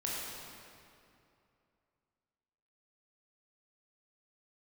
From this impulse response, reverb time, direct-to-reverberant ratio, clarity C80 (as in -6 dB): 2.6 s, -5.5 dB, -1.0 dB